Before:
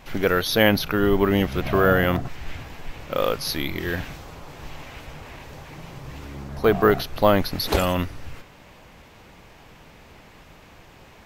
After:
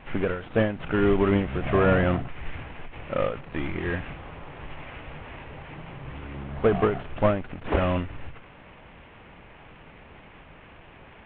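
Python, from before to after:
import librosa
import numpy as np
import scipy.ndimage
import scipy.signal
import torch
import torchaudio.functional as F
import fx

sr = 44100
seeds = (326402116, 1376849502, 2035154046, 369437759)

y = fx.cvsd(x, sr, bps=16000)
y = fx.end_taper(y, sr, db_per_s=110.0)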